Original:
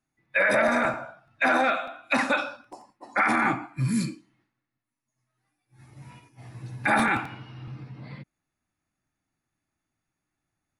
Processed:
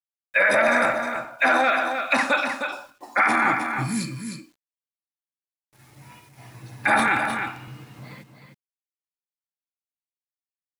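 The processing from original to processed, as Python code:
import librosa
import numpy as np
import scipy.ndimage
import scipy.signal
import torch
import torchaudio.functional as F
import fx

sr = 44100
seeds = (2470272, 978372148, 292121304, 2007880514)

p1 = fx.low_shelf(x, sr, hz=300.0, db=-8.5)
p2 = fx.quant_dither(p1, sr, seeds[0], bits=10, dither='none')
p3 = p2 + fx.echo_single(p2, sr, ms=309, db=-7.0, dry=0)
y = F.gain(torch.from_numpy(p3), 4.0).numpy()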